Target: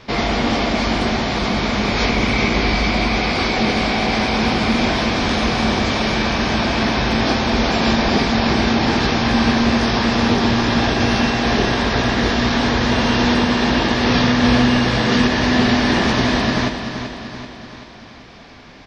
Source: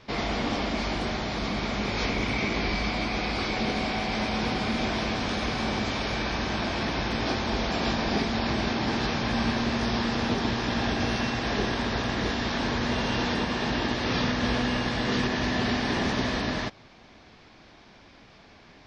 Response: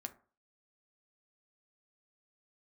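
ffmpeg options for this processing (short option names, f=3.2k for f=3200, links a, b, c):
-filter_complex "[0:a]aecho=1:1:385|770|1155|1540|1925|2310:0.355|0.188|0.0997|0.0528|0.028|0.0148,asplit=2[a][b];[1:a]atrim=start_sample=2205[c];[b][c]afir=irnorm=-1:irlink=0,volume=-2dB[d];[a][d]amix=inputs=2:normalize=0,volume=6dB"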